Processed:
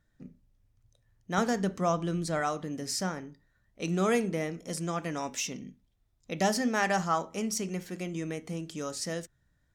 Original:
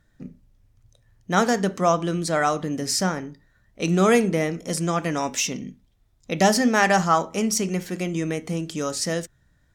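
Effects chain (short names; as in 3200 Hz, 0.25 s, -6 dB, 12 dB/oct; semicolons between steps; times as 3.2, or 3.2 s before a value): 1.38–2.41 low shelf 140 Hz +10.5 dB; gain -9 dB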